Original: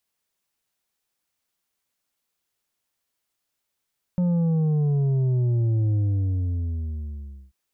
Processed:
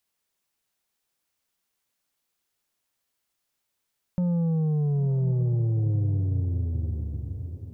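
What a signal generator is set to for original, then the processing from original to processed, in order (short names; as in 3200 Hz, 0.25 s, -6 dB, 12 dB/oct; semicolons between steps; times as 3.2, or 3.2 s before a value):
sub drop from 180 Hz, over 3.34 s, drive 6 dB, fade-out 1.58 s, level -19.5 dB
compressor 1.5:1, threshold -28 dBFS; diffused feedback echo 0.916 s, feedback 42%, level -11 dB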